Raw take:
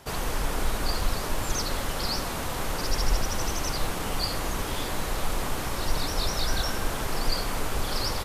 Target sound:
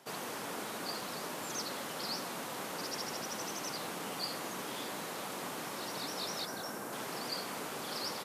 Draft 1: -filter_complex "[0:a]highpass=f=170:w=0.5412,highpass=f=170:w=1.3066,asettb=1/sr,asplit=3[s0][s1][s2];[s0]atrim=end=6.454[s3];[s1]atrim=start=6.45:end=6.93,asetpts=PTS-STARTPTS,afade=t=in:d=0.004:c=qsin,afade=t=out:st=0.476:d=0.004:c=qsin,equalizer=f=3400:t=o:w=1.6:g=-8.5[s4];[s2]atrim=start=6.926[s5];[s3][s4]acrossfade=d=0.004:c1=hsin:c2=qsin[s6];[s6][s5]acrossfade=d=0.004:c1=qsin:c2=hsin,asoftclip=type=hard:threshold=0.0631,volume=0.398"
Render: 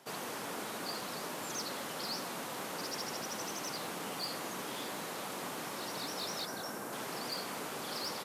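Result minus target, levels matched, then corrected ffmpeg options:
hard clipper: distortion +34 dB
-filter_complex "[0:a]highpass=f=170:w=0.5412,highpass=f=170:w=1.3066,asettb=1/sr,asplit=3[s0][s1][s2];[s0]atrim=end=6.454[s3];[s1]atrim=start=6.45:end=6.93,asetpts=PTS-STARTPTS,afade=t=in:d=0.004:c=qsin,afade=t=out:st=0.476:d=0.004:c=qsin,equalizer=f=3400:t=o:w=1.6:g=-8.5[s4];[s2]atrim=start=6.926[s5];[s3][s4]acrossfade=d=0.004:c1=hsin:c2=qsin[s6];[s6][s5]acrossfade=d=0.004:c1=qsin:c2=hsin,asoftclip=type=hard:threshold=0.158,volume=0.398"

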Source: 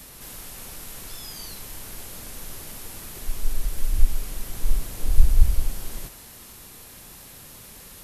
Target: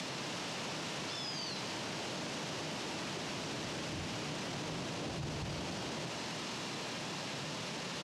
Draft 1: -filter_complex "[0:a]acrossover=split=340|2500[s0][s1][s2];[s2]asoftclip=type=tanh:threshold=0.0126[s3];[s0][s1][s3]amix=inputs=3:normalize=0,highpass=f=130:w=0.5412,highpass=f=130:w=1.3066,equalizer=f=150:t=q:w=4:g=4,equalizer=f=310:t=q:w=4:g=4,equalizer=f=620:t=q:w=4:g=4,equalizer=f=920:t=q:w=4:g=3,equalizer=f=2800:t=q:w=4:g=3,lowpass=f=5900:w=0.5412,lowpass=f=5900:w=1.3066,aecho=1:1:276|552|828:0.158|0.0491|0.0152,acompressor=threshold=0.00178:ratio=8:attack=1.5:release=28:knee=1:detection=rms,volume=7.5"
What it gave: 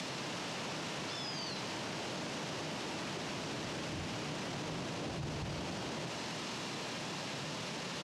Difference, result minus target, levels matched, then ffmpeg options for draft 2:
saturation: distortion +18 dB
-filter_complex "[0:a]acrossover=split=340|2500[s0][s1][s2];[s2]asoftclip=type=tanh:threshold=0.0473[s3];[s0][s1][s3]amix=inputs=3:normalize=0,highpass=f=130:w=0.5412,highpass=f=130:w=1.3066,equalizer=f=150:t=q:w=4:g=4,equalizer=f=310:t=q:w=4:g=4,equalizer=f=620:t=q:w=4:g=4,equalizer=f=920:t=q:w=4:g=3,equalizer=f=2800:t=q:w=4:g=3,lowpass=f=5900:w=0.5412,lowpass=f=5900:w=1.3066,aecho=1:1:276|552|828:0.158|0.0491|0.0152,acompressor=threshold=0.00178:ratio=8:attack=1.5:release=28:knee=1:detection=rms,volume=7.5"

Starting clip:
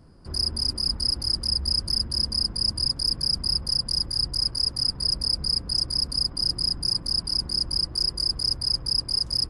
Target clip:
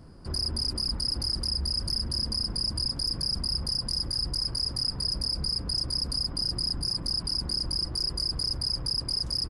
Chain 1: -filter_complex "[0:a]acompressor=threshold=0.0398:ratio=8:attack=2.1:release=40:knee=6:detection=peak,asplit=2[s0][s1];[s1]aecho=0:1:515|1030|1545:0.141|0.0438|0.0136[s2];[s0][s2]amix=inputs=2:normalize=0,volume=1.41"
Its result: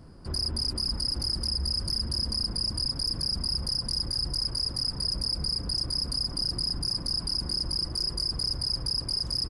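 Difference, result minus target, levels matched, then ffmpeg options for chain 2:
echo 176 ms early
-filter_complex "[0:a]acompressor=threshold=0.0398:ratio=8:attack=2.1:release=40:knee=6:detection=peak,asplit=2[s0][s1];[s1]aecho=0:1:691|1382|2073:0.141|0.0438|0.0136[s2];[s0][s2]amix=inputs=2:normalize=0,volume=1.41"

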